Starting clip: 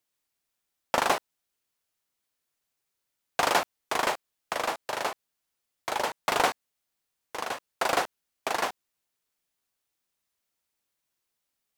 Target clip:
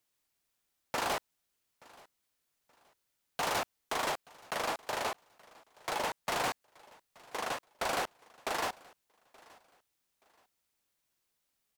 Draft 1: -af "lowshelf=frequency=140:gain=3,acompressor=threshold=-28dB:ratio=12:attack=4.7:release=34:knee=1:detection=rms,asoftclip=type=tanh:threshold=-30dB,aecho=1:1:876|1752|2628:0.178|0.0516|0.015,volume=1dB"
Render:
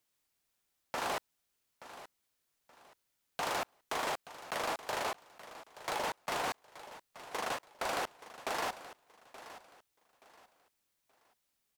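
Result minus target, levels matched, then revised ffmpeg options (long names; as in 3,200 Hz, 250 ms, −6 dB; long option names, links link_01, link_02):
downward compressor: peak gain reduction +11.5 dB; echo-to-direct +9 dB
-af "lowshelf=frequency=140:gain=3,asoftclip=type=tanh:threshold=-30dB,aecho=1:1:876|1752:0.0631|0.0183,volume=1dB"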